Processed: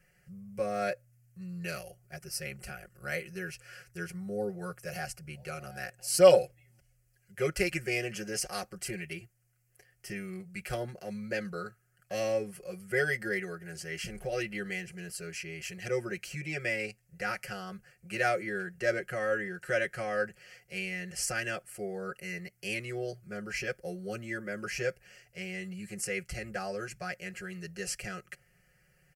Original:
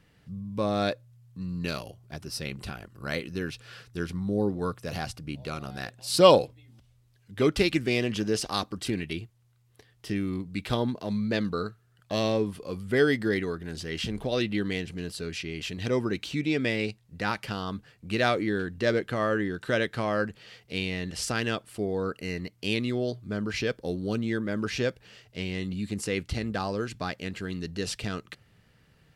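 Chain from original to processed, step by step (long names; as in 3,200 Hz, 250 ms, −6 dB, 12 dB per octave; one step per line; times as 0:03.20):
high-shelf EQ 2,200 Hz +8 dB
phaser with its sweep stopped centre 1,000 Hz, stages 6
comb filter 5.5 ms, depth 95%
level −6 dB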